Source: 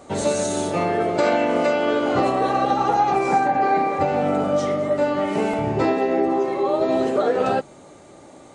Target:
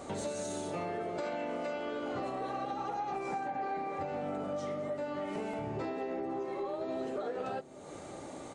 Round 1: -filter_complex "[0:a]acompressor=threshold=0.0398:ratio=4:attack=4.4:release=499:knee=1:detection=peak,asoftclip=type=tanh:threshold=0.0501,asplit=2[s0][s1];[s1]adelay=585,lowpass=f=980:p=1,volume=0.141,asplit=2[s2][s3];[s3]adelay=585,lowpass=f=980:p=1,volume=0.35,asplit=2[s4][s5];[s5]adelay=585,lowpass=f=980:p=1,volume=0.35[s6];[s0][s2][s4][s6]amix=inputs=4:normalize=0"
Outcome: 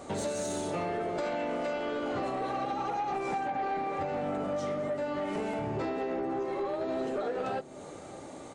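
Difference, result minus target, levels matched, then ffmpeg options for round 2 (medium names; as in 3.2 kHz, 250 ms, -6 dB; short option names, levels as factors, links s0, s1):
compression: peak gain reduction -5 dB
-filter_complex "[0:a]acompressor=threshold=0.0178:ratio=4:attack=4.4:release=499:knee=1:detection=peak,asoftclip=type=tanh:threshold=0.0501,asplit=2[s0][s1];[s1]adelay=585,lowpass=f=980:p=1,volume=0.141,asplit=2[s2][s3];[s3]adelay=585,lowpass=f=980:p=1,volume=0.35,asplit=2[s4][s5];[s5]adelay=585,lowpass=f=980:p=1,volume=0.35[s6];[s0][s2][s4][s6]amix=inputs=4:normalize=0"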